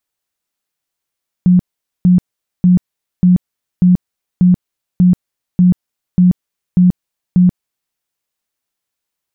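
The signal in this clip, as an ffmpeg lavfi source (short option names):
-f lavfi -i "aevalsrc='0.562*sin(2*PI*180*mod(t,0.59))*lt(mod(t,0.59),24/180)':d=6.49:s=44100"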